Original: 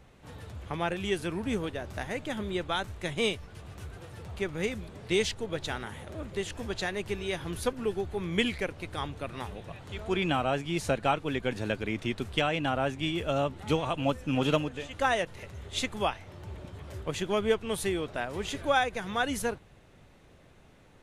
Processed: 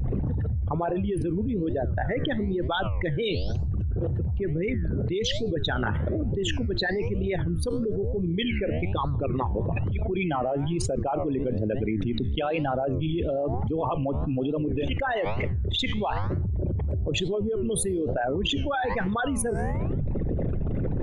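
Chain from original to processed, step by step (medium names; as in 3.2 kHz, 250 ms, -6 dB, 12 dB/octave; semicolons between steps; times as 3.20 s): resonances exaggerated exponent 3; flange 1.1 Hz, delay 6.6 ms, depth 8.7 ms, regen +89%; level flattener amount 100%; trim -1.5 dB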